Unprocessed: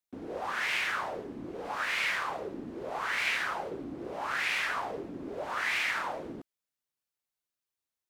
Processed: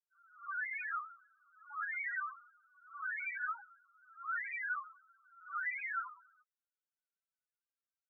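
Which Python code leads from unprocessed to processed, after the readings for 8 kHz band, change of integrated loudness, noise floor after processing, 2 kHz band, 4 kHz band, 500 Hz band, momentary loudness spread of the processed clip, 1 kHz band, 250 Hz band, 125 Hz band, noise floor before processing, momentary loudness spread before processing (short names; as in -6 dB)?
under -35 dB, -7.0 dB, under -85 dBFS, -7.0 dB, under -40 dB, under -40 dB, 14 LU, -8.0 dB, under -40 dB, under -40 dB, under -85 dBFS, 12 LU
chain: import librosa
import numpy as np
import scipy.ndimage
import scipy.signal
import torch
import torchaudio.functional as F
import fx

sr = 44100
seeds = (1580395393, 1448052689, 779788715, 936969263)

y = fx.ladder_highpass(x, sr, hz=1200.0, resonance_pct=55)
y = fx.spec_topn(y, sr, count=1)
y = F.gain(torch.from_numpy(y), 11.5).numpy()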